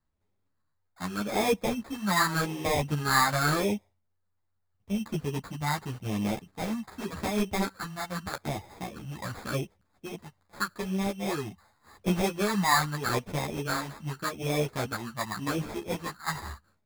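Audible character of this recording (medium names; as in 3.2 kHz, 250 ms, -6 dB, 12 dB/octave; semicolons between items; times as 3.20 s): phasing stages 4, 0.84 Hz, lowest notch 420–1500 Hz; aliases and images of a low sample rate 2.9 kHz, jitter 0%; a shimmering, thickened sound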